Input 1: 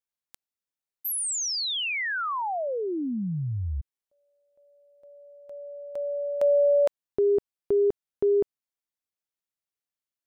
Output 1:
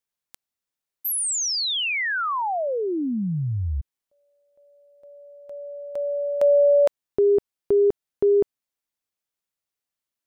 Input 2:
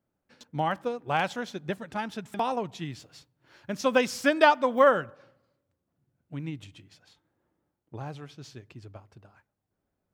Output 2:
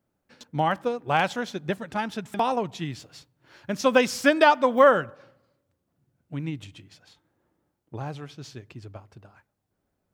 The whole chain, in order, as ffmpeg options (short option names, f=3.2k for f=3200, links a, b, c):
-af "alimiter=level_in=9dB:limit=-1dB:release=50:level=0:latency=1,volume=-5dB"